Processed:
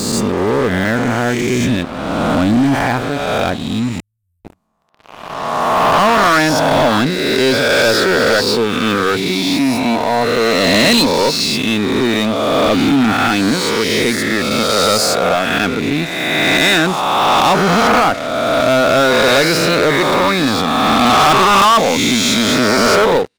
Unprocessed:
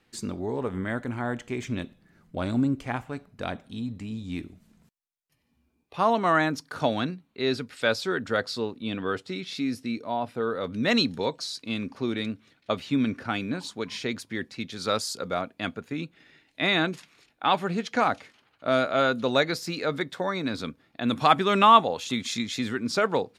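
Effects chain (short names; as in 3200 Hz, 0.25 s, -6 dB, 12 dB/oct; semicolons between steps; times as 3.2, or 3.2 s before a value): spectral swells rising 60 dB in 2.00 s; 4–4.45 inverse Chebyshev band-stop 280–3800 Hz, stop band 70 dB; sample leveller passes 5; gain -4.5 dB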